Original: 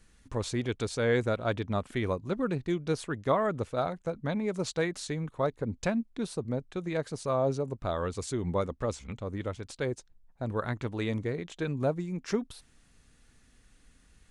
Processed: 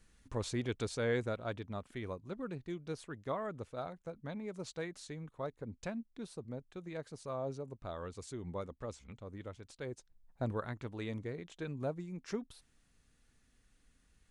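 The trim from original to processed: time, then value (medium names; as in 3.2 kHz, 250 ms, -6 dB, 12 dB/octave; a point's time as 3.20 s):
0.86 s -5 dB
1.74 s -11.5 dB
9.83 s -11.5 dB
10.43 s -1 dB
10.66 s -9 dB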